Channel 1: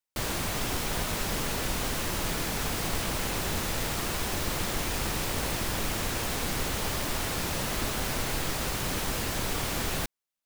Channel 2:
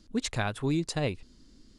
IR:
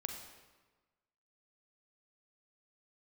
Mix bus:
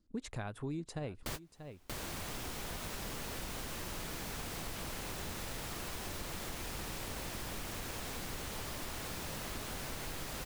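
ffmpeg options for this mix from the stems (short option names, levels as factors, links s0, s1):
-filter_complex "[0:a]adelay=1100,volume=1.26,asplit=2[s0][s1];[s1]volume=0.501[s2];[1:a]agate=range=0.158:threshold=0.00562:ratio=16:detection=peak,equalizer=f=4400:t=o:w=2.3:g=-8,volume=1,asplit=3[s3][s4][s5];[s4]volume=0.119[s6];[s5]apad=whole_len=509654[s7];[s0][s7]sidechaingate=range=0.00891:threshold=0.00141:ratio=16:detection=peak[s8];[s2][s6]amix=inputs=2:normalize=0,aecho=0:1:635:1[s9];[s8][s3][s9]amix=inputs=3:normalize=0,acompressor=threshold=0.00794:ratio=2.5"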